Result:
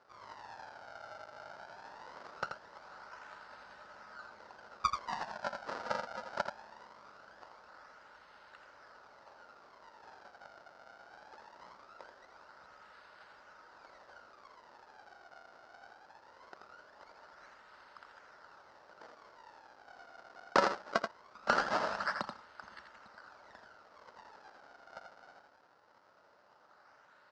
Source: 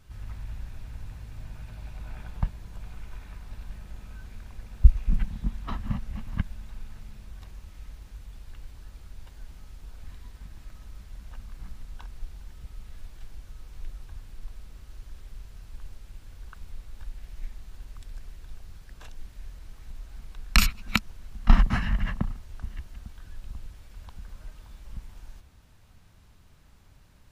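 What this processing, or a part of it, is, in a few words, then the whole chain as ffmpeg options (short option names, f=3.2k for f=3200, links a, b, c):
circuit-bent sampling toy: -filter_complex "[0:a]asettb=1/sr,asplit=3[a][b][c];[a]atrim=end=21.144[d];[b]atrim=start=21.14:end=21.92,asetpts=PTS-STARTPTS,afade=t=in:d=0.004:c=qsin,afade=t=out:st=0.776:d=0.004:c=qsin,lowpass=2.9k[e];[c]atrim=start=21.916[f];[d][e]acrossfade=d=0.004:c1=hsin:c2=qsin[g];[g][f]acrossfade=d=0.004:c1=qsin:c2=hsin,bandreject=f=690:w=12,acrusher=samples=34:mix=1:aa=0.000001:lfo=1:lforange=54.4:lforate=0.21,highpass=560,equalizer=f=590:t=q:w=4:g=6,equalizer=f=900:t=q:w=4:g=5,equalizer=f=1.4k:t=q:w=4:g=10,equalizer=f=2.4k:t=q:w=4:g=-7,equalizer=f=3.4k:t=q:w=4:g=-7,equalizer=f=5k:t=q:w=4:g=4,lowpass=f=5.2k:w=0.5412,lowpass=f=5.2k:w=1.3066,aecho=1:1:83:0.473"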